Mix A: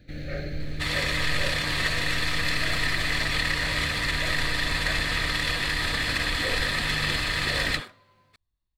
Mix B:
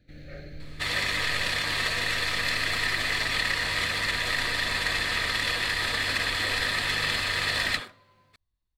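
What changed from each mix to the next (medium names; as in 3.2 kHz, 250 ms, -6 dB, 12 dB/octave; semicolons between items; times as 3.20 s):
first sound -9.5 dB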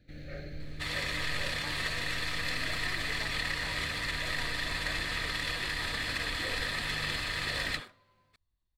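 second sound -7.0 dB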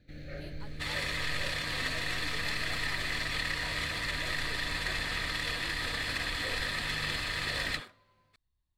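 speech: entry -0.75 s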